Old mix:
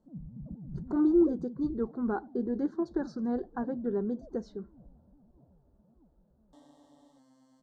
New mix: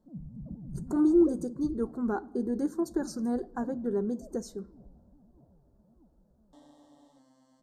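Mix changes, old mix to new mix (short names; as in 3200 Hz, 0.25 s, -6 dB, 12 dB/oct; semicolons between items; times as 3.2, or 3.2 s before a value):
speech: remove LPF 4000 Hz 24 dB/oct; reverb: on, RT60 1.0 s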